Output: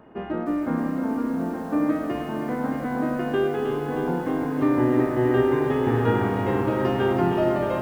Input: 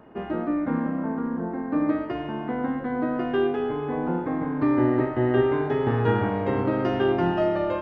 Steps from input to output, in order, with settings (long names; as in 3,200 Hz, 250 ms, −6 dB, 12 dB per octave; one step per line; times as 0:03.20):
feedback echo at a low word length 312 ms, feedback 80%, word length 8 bits, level −8 dB